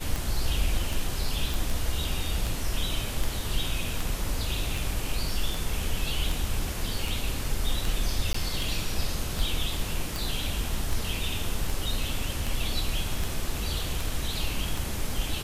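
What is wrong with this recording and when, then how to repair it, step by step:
scratch tick 78 rpm
0:01.54: click
0:08.33–0:08.34: drop-out 14 ms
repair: click removal
repair the gap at 0:08.33, 14 ms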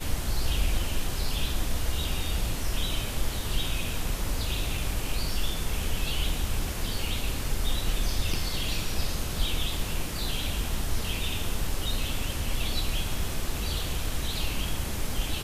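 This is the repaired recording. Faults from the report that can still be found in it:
none of them is left

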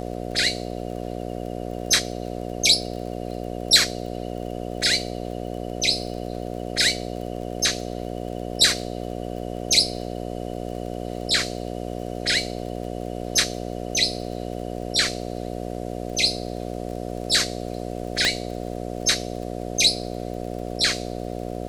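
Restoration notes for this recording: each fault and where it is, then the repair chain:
mains buzz 60 Hz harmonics 12 −31 dBFS
surface crackle 30 per second −34 dBFS
0:18.25: click −7 dBFS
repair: click removal
hum removal 60 Hz, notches 12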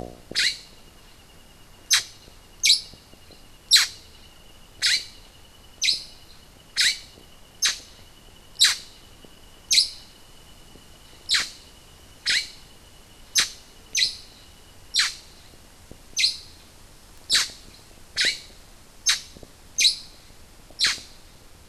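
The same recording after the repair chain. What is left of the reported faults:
none of them is left

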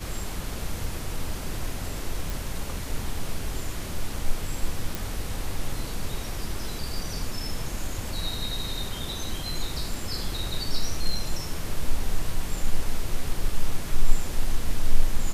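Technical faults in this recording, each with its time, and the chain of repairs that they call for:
0:02.30: click
0:04.95: click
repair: click removal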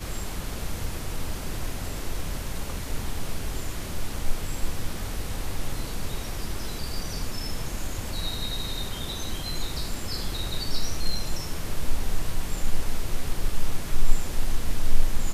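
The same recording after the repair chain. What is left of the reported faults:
none of them is left

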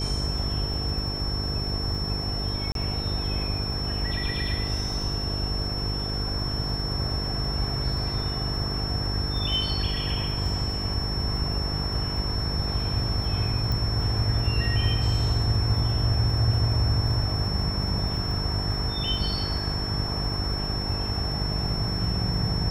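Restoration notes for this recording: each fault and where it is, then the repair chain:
mains buzz 50 Hz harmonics 9 −31 dBFS
surface crackle 34 per second −35 dBFS
whistle 5,400 Hz −31 dBFS
0:02.72–0:02.75: drop-out 32 ms
0:13.72: click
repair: click removal
hum removal 50 Hz, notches 9
notch filter 5,400 Hz, Q 30
repair the gap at 0:02.72, 32 ms

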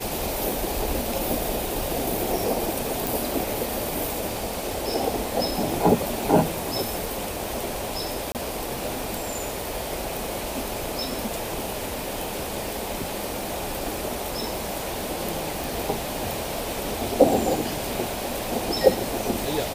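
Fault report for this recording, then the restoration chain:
surface crackle 55 per second −32 dBFS
0:03.07: click
0:08.32–0:08.35: drop-out 28 ms
0:15.64: click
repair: click removal
repair the gap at 0:08.32, 28 ms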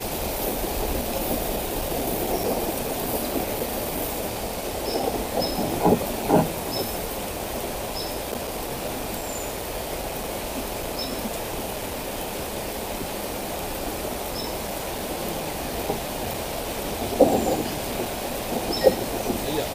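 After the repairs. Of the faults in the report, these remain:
none of them is left

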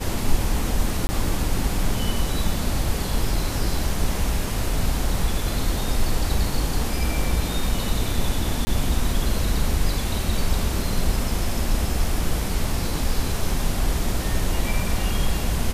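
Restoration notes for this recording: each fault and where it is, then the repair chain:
0:01.07–0:01.09: drop-out 20 ms
0:08.65–0:08.67: drop-out 20 ms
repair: repair the gap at 0:01.07, 20 ms
repair the gap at 0:08.65, 20 ms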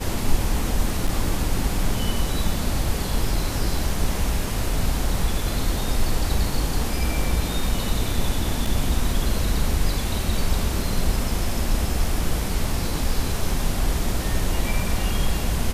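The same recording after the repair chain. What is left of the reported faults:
none of them is left

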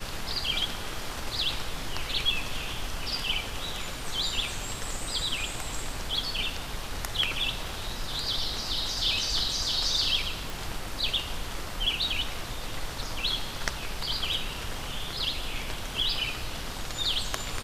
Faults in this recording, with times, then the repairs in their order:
0:10.50: click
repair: click removal

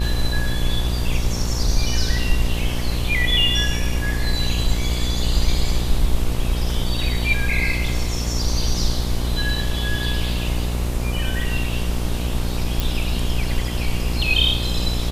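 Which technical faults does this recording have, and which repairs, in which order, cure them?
mains buzz 60 Hz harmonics 20 −24 dBFS
0:12.80: click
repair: click removal
hum removal 60 Hz, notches 20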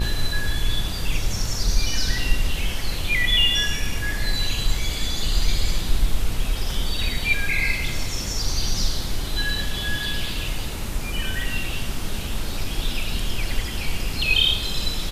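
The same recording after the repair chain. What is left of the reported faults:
none of them is left

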